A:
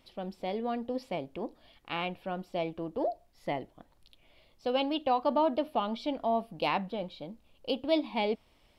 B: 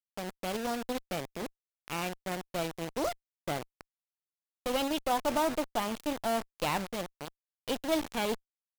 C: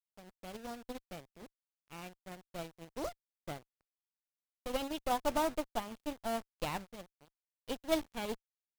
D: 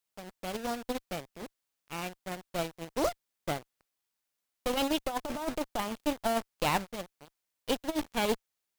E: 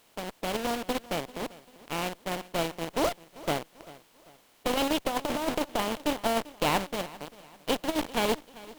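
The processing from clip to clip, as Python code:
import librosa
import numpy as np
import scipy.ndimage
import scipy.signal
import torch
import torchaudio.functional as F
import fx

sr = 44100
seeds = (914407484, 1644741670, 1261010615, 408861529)

y1 = fx.quant_dither(x, sr, seeds[0], bits=6, dither='none')
y1 = fx.cheby_harmonics(y1, sr, harmonics=(6,), levels_db=(-16,), full_scale_db=-16.0)
y1 = y1 * 10.0 ** (-2.5 / 20.0)
y2 = fx.low_shelf(y1, sr, hz=130.0, db=8.0)
y2 = fx.upward_expand(y2, sr, threshold_db=-45.0, expansion=2.5)
y2 = y2 * 10.0 ** (-1.0 / 20.0)
y3 = fx.low_shelf(y2, sr, hz=210.0, db=-4.0)
y3 = fx.over_compress(y3, sr, threshold_db=-36.0, ratio=-0.5)
y3 = y3 * 10.0 ** (8.5 / 20.0)
y4 = fx.bin_compress(y3, sr, power=0.6)
y4 = fx.echo_feedback(y4, sr, ms=392, feedback_pct=40, wet_db=-19.5)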